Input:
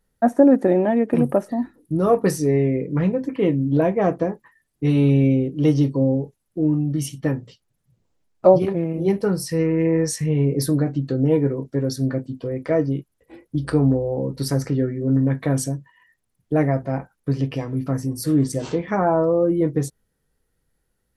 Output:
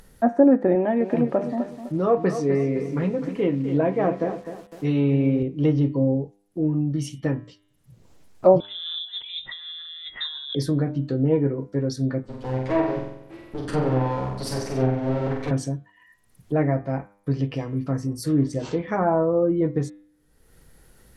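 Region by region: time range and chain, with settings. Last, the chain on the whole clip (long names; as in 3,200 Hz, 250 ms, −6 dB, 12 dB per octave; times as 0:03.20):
0:00.75–0:05.43: high-pass filter 160 Hz 6 dB per octave + feedback echo at a low word length 254 ms, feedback 35%, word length 7 bits, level −10 dB
0:08.60–0:10.55: high-pass filter 270 Hz + compressor whose output falls as the input rises −32 dBFS + voice inversion scrambler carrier 3,800 Hz
0:12.23–0:15.51: lower of the sound and its delayed copy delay 9.2 ms + flutter between parallel walls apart 7.9 metres, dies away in 0.79 s
whole clip: treble cut that deepens with the level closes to 2,600 Hz, closed at −13.5 dBFS; hum removal 100.4 Hz, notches 39; upward compression, threshold −32 dBFS; level −2 dB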